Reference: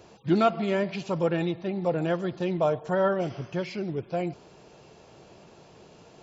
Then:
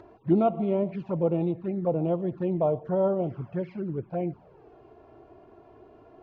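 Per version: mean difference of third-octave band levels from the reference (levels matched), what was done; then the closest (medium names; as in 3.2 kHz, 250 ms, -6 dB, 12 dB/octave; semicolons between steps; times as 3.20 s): 6.0 dB: low-pass 1.2 kHz 12 dB/octave; upward compressor, threshold -45 dBFS; touch-sensitive flanger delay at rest 3.4 ms, full sweep at -24 dBFS; trim +1.5 dB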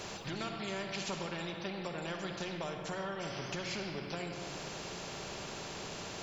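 14.0 dB: compression, threshold -37 dBFS, peak gain reduction 19 dB; simulated room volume 2500 m³, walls mixed, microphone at 1.2 m; spectrum-flattening compressor 2:1; trim +1 dB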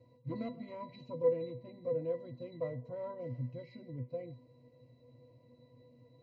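9.0 dB: peaking EQ 1.2 kHz -13.5 dB 0.52 oct; one-sided clip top -23.5 dBFS; pitch-class resonator B, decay 0.2 s; trim +4.5 dB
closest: first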